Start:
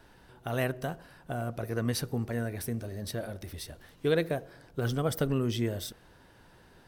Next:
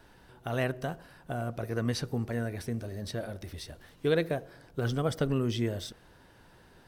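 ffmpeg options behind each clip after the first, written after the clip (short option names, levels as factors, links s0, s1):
-filter_complex "[0:a]acrossover=split=7800[s0][s1];[s1]acompressor=threshold=0.00141:ratio=4:attack=1:release=60[s2];[s0][s2]amix=inputs=2:normalize=0"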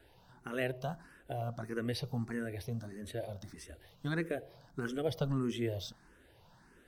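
-filter_complex "[0:a]asplit=2[s0][s1];[s1]afreqshift=1.6[s2];[s0][s2]amix=inputs=2:normalize=1,volume=0.794"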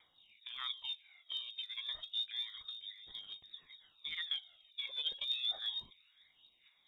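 -af "lowpass=f=3200:t=q:w=0.5098,lowpass=f=3200:t=q:w=0.6013,lowpass=f=3200:t=q:w=0.9,lowpass=f=3200:t=q:w=2.563,afreqshift=-3800,aphaser=in_gain=1:out_gain=1:delay=2:decay=0.67:speed=0.3:type=triangular,volume=0.422"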